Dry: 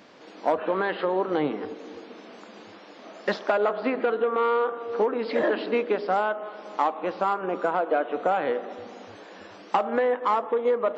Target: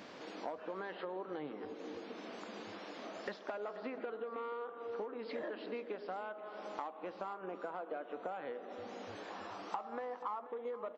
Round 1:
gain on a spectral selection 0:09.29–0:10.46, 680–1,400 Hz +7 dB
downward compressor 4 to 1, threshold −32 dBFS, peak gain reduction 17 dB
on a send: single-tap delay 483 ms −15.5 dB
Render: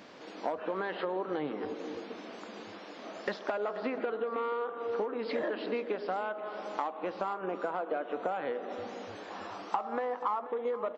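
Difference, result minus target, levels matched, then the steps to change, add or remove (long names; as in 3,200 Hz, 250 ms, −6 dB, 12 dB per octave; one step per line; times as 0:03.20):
downward compressor: peak gain reduction −8.5 dB
change: downward compressor 4 to 1, threshold −43.5 dBFS, peak gain reduction 26 dB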